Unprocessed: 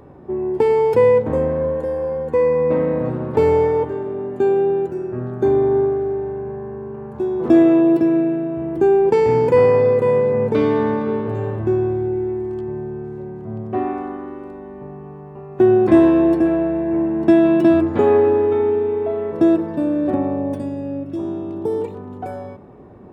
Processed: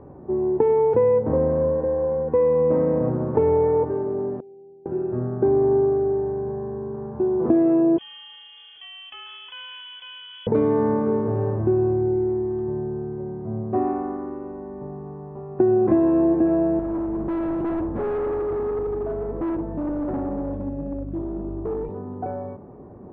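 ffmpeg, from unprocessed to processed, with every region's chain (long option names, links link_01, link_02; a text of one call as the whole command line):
ffmpeg -i in.wav -filter_complex "[0:a]asettb=1/sr,asplit=3[link_01][link_02][link_03];[link_01]atrim=end=4.404[link_04];[link_02]atrim=start=4.4:end=4.86,asetpts=PTS-STARTPTS,afade=type=in:duration=0.004:curve=qsin,afade=type=out:start_time=0.456:duration=0.004:curve=qsin,agate=range=-29dB:threshold=-6dB:ratio=16:release=100:detection=peak,asuperstop=centerf=1400:order=8:qfactor=0.81[link_05];[link_03]atrim=start=4.856[link_06];[link_04][link_05]acrossfade=duration=0.004:curve1=hsin:curve2=qsin[link_07];[link_07][link_06]acrossfade=duration=0.004:curve1=qsin:curve2=hsin,asettb=1/sr,asplit=3[link_08][link_09][link_10];[link_08]atrim=end=7.984[link_11];[link_09]atrim=start=7.98:end=10.47,asetpts=PTS-STARTPTS,afade=type=in:duration=0.004:curve=qsin,afade=type=out:start_time=2.486:duration=0.004:curve=qsin,equalizer=frequency=360:width_type=o:width=1.2:gain=-6.5,acompressor=threshold=-22dB:ratio=2.5:attack=3.2:release=140:knee=1:detection=peak,lowpass=frequency=3000:width_type=q:width=0.5098,lowpass=frequency=3000:width_type=q:width=0.6013,lowpass=frequency=3000:width_type=q:width=0.9,lowpass=frequency=3000:width_type=q:width=2.563,afreqshift=-3500[link_12];[link_10]atrim=start=10.466[link_13];[link_11][link_12]acrossfade=duration=0.004:curve1=hsin:curve2=qsin[link_14];[link_14][link_13]acrossfade=duration=0.004:curve1=qsin:curve2=hsin,asettb=1/sr,asplit=3[link_15][link_16][link_17];[link_15]atrim=end=16.794[link_18];[link_16]atrim=start=16.79:end=21.89,asetpts=PTS-STARTPTS,afade=type=in:duration=0.004:curve=qsin,afade=type=out:start_time=5.096:duration=0.004:curve=qsin,aeval=exprs='val(0)+0.0398*(sin(2*PI*50*n/s)+sin(2*PI*2*50*n/s)/2+sin(2*PI*3*50*n/s)/3+sin(2*PI*4*50*n/s)/4+sin(2*PI*5*50*n/s)/5)':channel_layout=same,flanger=delay=1.3:depth=7.5:regen=72:speed=1.9:shape=triangular,asoftclip=type=hard:threshold=-23dB[link_19];[link_17]atrim=start=21.886[link_20];[link_18][link_19]acrossfade=duration=0.004:curve1=hsin:curve2=qsin[link_21];[link_21][link_20]acrossfade=duration=0.004:curve1=qsin:curve2=hsin,lowpass=1100,acompressor=threshold=-15dB:ratio=6" out.wav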